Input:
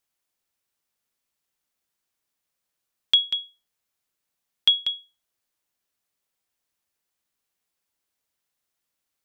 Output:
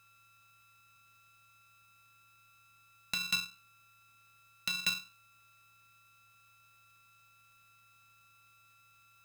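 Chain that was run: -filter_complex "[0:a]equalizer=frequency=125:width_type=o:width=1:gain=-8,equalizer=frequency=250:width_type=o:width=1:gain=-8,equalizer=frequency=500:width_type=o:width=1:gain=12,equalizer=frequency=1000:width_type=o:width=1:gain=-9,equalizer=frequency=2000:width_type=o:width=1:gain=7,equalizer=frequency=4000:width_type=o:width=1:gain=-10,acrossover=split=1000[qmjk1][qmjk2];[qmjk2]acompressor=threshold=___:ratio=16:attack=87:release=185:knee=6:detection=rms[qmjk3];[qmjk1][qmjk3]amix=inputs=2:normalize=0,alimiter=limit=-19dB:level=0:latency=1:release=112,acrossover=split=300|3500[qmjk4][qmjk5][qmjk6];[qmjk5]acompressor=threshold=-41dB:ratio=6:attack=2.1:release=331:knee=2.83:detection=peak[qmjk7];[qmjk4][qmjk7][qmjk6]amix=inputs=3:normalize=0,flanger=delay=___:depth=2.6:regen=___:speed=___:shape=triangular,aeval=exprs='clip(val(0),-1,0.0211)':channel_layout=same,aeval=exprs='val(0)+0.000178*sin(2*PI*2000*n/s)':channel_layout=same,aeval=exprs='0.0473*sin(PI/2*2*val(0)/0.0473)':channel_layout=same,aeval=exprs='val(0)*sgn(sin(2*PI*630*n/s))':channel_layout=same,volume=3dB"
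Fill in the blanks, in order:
-33dB, 8.7, 68, 1.3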